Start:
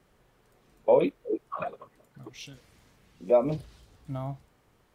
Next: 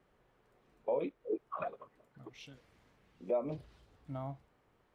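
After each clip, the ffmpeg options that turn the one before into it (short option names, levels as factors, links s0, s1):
-af "highshelf=f=4100:g=-8,alimiter=limit=0.106:level=0:latency=1:release=344,bass=f=250:g=-4,treble=f=4000:g=-4,volume=0.596"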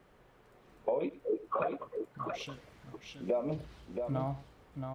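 -af "acompressor=threshold=0.0112:ratio=3,aecho=1:1:102|675:0.126|0.531,volume=2.66"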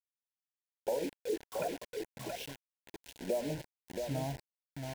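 -af "acrusher=bits=6:mix=0:aa=0.000001,asuperstop=centerf=1200:order=4:qfactor=2.4,volume=0.794"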